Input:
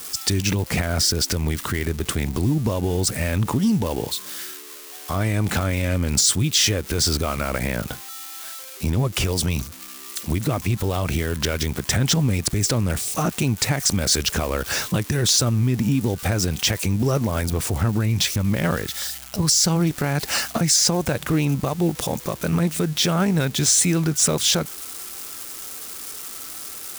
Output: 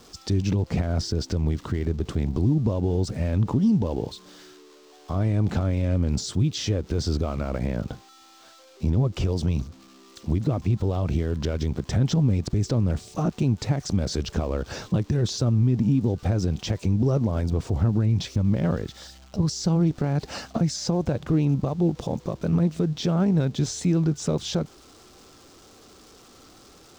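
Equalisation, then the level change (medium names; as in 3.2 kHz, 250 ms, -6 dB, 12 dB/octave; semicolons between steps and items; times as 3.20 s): distance through air 180 m; peaking EQ 2 kHz -13 dB 2.1 oct; 0.0 dB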